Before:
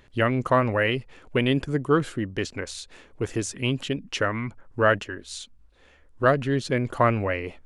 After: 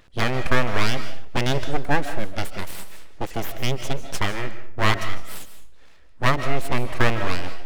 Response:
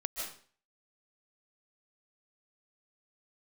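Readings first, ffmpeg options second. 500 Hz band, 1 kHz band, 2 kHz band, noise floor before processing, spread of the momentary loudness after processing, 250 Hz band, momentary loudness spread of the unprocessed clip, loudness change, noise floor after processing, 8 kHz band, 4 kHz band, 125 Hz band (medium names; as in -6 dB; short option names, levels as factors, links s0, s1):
-4.0 dB, +0.5 dB, +1.5 dB, -56 dBFS, 13 LU, -3.5 dB, 13 LU, -0.5 dB, -42 dBFS, +1.5 dB, +3.5 dB, +0.5 dB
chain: -filter_complex "[0:a]aeval=exprs='abs(val(0))':c=same,asplit=2[s0][s1];[1:a]atrim=start_sample=2205[s2];[s1][s2]afir=irnorm=-1:irlink=0,volume=0.447[s3];[s0][s3]amix=inputs=2:normalize=0"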